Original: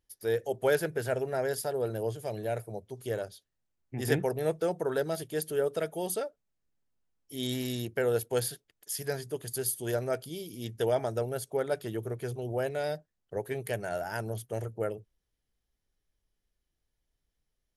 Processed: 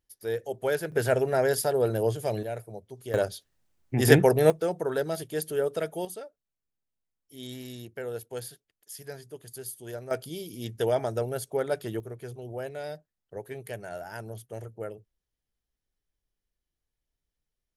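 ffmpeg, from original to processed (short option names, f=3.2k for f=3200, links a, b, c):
-af "asetnsamples=n=441:p=0,asendcmd='0.92 volume volume 6.5dB;2.43 volume volume -2dB;3.14 volume volume 10dB;4.5 volume volume 1.5dB;6.05 volume volume -7.5dB;10.11 volume volume 2dB;12 volume volume -4.5dB',volume=-1.5dB"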